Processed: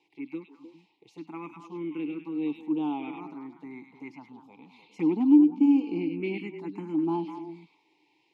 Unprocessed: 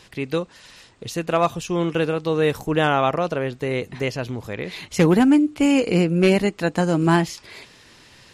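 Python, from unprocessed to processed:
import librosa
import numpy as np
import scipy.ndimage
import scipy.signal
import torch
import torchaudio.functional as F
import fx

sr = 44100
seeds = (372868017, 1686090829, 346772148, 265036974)

y = scipy.signal.sosfilt(scipy.signal.butter(4, 150.0, 'highpass', fs=sr, output='sos'), x)
y = fx.vibrato(y, sr, rate_hz=1.3, depth_cents=7.7)
y = fx.vowel_filter(y, sr, vowel='u')
y = fx.env_phaser(y, sr, low_hz=220.0, high_hz=2000.0, full_db=-24.5)
y = fx.echo_stepped(y, sr, ms=101, hz=3400.0, octaves=-1.4, feedback_pct=70, wet_db=-2.0)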